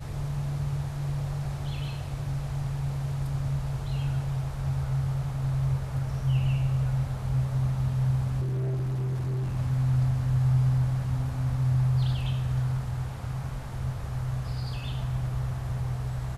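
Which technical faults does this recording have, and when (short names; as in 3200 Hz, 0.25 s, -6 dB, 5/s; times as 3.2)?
8.4–9.57 clipped -26.5 dBFS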